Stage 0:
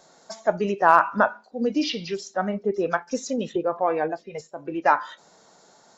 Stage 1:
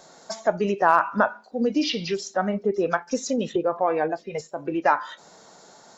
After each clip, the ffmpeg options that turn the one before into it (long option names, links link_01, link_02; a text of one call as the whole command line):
ffmpeg -i in.wav -af "acompressor=threshold=-31dB:ratio=1.5,volume=5dB" out.wav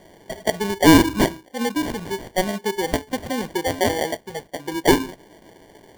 ffmpeg -i in.wav -af "equalizer=frequency=980:width_type=o:width=0.34:gain=12,acrusher=samples=34:mix=1:aa=0.000001,volume=-1dB" out.wav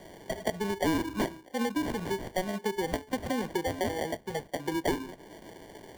ffmpeg -i in.wav -filter_complex "[0:a]acrossover=split=240|2300[link_01][link_02][link_03];[link_01]acompressor=threshold=-37dB:ratio=4[link_04];[link_02]acompressor=threshold=-30dB:ratio=4[link_05];[link_03]acompressor=threshold=-42dB:ratio=4[link_06];[link_04][link_05][link_06]amix=inputs=3:normalize=0" out.wav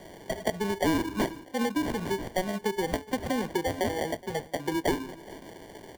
ffmpeg -i in.wav -af "aecho=1:1:421:0.1,volume=2dB" out.wav